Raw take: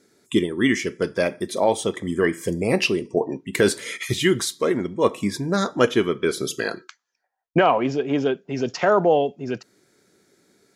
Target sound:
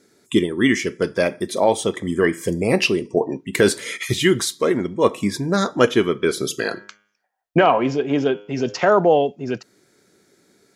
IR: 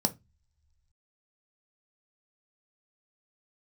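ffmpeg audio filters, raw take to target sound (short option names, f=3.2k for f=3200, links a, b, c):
-filter_complex "[0:a]asettb=1/sr,asplit=3[a][b][c];[a]atrim=end=6.574[d];[b]atrim=start=6.57:end=8.8,asetpts=PTS-STARTPTS,afade=t=in:d=0.004:c=qsin,afade=t=out:st=2.226:d=0.004:c=qsin,bandreject=f=102.8:t=h:w=4,bandreject=f=205.6:t=h:w=4,bandreject=f=308.4:t=h:w=4,bandreject=f=411.2:t=h:w=4,bandreject=f=514:t=h:w=4,bandreject=f=616.8:t=h:w=4,bandreject=f=719.6:t=h:w=4,bandreject=f=822.4:t=h:w=4,bandreject=f=925.2:t=h:w=4,bandreject=f=1.028k:t=h:w=4,bandreject=f=1.1308k:t=h:w=4,bandreject=f=1.2336k:t=h:w=4,bandreject=f=1.3364k:t=h:w=4,bandreject=f=1.4392k:t=h:w=4,bandreject=f=1.542k:t=h:w=4,bandreject=f=1.6448k:t=h:w=4,bandreject=f=1.7476k:t=h:w=4,bandreject=f=1.8504k:t=h:w=4,bandreject=f=1.9532k:t=h:w=4,bandreject=f=2.056k:t=h:w=4,bandreject=f=2.1588k:t=h:w=4,bandreject=f=2.2616k:t=h:w=4,bandreject=f=2.3644k:t=h:w=4,bandreject=f=2.4672k:t=h:w=4,bandreject=f=2.57k:t=h:w=4,bandreject=f=2.6728k:t=h:w=4,bandreject=f=2.7756k:t=h:w=4,bandreject=f=2.8784k:t=h:w=4,bandreject=f=2.9812k:t=h:w=4,bandreject=f=3.084k:t=h:w=4,bandreject=f=3.1868k:t=h:w=4,bandreject=f=3.2896k:t=h:w=4,bandreject=f=3.3924k:t=h:w=4[e];[c]atrim=start=8.796[f];[d][e]acrossfade=d=0.004:c1=hsin:c2=qsin[g];[g][f]acrossfade=d=0.004:c1=qsin:c2=hsin,volume=2.5dB"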